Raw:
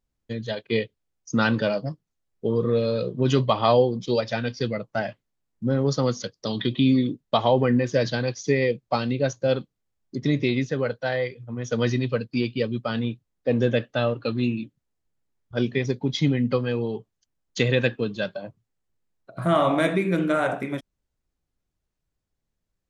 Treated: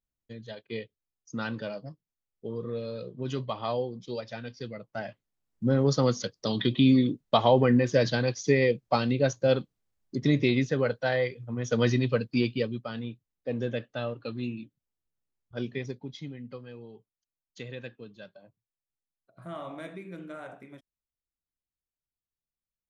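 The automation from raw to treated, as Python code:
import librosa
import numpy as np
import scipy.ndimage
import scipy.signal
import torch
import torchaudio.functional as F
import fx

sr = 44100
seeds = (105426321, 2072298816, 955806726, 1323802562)

y = fx.gain(x, sr, db=fx.line((4.74, -12.0), (5.64, -1.0), (12.49, -1.0), (12.9, -9.5), (15.81, -9.5), (16.28, -19.0)))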